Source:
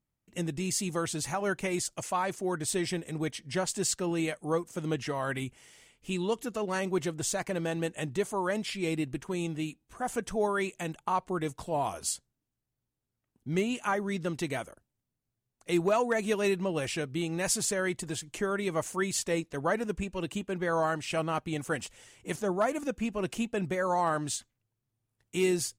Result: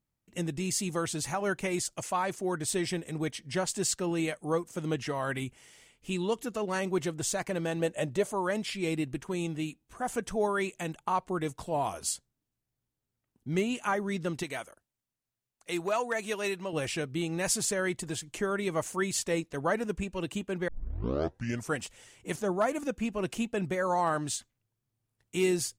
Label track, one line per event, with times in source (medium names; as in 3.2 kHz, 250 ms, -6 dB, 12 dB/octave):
7.800000	8.320000	peaking EQ 580 Hz +12 dB 0.35 oct
14.430000	16.730000	bass shelf 440 Hz -10.5 dB
20.680000	20.680000	tape start 1.08 s